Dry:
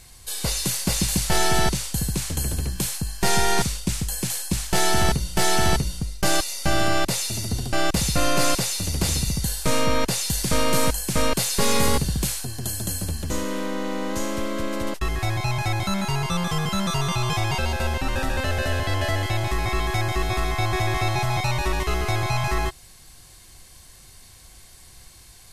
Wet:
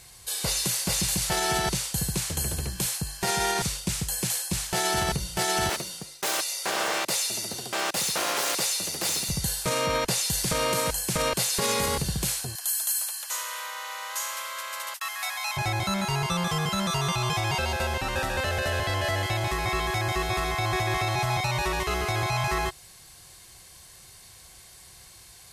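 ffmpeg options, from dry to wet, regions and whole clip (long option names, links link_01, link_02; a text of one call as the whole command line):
ffmpeg -i in.wav -filter_complex "[0:a]asettb=1/sr,asplit=3[link_01][link_02][link_03];[link_01]atrim=end=5.694[link_04];[link_02]atrim=start=5.69:end=9.29,asetpts=PTS-STARTPTS,afade=type=in:duration=0.004:curve=qsin,afade=type=out:start_time=3.596:duration=0.004:curve=qsin,aeval=exprs='0.133*(abs(mod(val(0)/0.133+3,4)-2)-1)':channel_layout=same,highpass=270[link_05];[link_03]atrim=start=9.286[link_06];[link_04][link_05]acrossfade=duration=0.004:curve1=hsin:curve2=qsin[link_07];[link_07][link_06]acrossfade=duration=0.004:curve1=qsin:curve2=hsin,asettb=1/sr,asplit=3[link_08][link_09][link_10];[link_08]atrim=end=12.554[link_11];[link_09]atrim=start=12.55:end=15.57,asetpts=PTS-STARTPTS,afade=type=in:duration=0.004:curve=qsin,afade=type=out:start_time=3.016:duration=0.004:curve=qsin,highpass=frequency=900:width=0.5412,highpass=frequency=900:width=1.3066,highshelf=frequency=11000:gain=12[link_12];[link_10]atrim=start=15.566[link_13];[link_11][link_12]acrossfade=duration=0.004:curve1=hsin:curve2=qsin[link_14];[link_14][link_13]acrossfade=duration=0.004:curve1=qsin:curve2=hsin,highpass=frequency=120:poles=1,equalizer=frequency=260:width=3.5:gain=-9,alimiter=limit=-16dB:level=0:latency=1:release=41" out.wav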